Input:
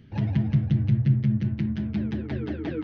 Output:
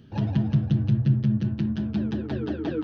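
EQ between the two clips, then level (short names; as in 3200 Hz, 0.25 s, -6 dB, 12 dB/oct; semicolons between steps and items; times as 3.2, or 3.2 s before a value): low shelf 150 Hz -7.5 dB; bell 2100 Hz -14.5 dB 0.33 oct; +4.0 dB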